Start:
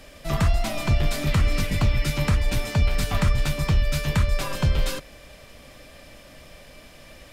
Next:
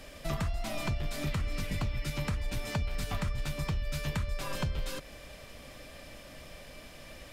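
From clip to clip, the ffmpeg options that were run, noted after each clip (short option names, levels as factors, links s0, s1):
-af "acompressor=threshold=0.0398:ratio=6,volume=0.794"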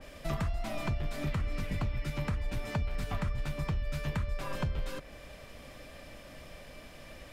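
-af "adynamicequalizer=threshold=0.00158:dfrequency=2800:dqfactor=0.7:tfrequency=2800:tqfactor=0.7:attack=5:release=100:ratio=0.375:range=4:mode=cutabove:tftype=highshelf"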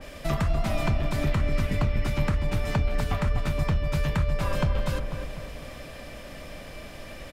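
-filter_complex "[0:a]asplit=2[s0][s1];[s1]adelay=247,lowpass=f=1500:p=1,volume=0.562,asplit=2[s2][s3];[s3]adelay=247,lowpass=f=1500:p=1,volume=0.49,asplit=2[s4][s5];[s5]adelay=247,lowpass=f=1500:p=1,volume=0.49,asplit=2[s6][s7];[s7]adelay=247,lowpass=f=1500:p=1,volume=0.49,asplit=2[s8][s9];[s9]adelay=247,lowpass=f=1500:p=1,volume=0.49,asplit=2[s10][s11];[s11]adelay=247,lowpass=f=1500:p=1,volume=0.49[s12];[s0][s2][s4][s6][s8][s10][s12]amix=inputs=7:normalize=0,volume=2.24"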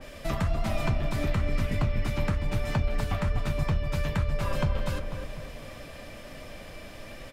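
-af "flanger=delay=7.7:depth=3:regen=-52:speed=1.1:shape=triangular,volume=1.26"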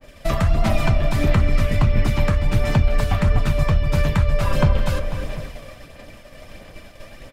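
-af "agate=range=0.0224:threshold=0.0178:ratio=3:detection=peak,aphaser=in_gain=1:out_gain=1:delay=1.8:decay=0.29:speed=1.5:type=sinusoidal,volume=2.37"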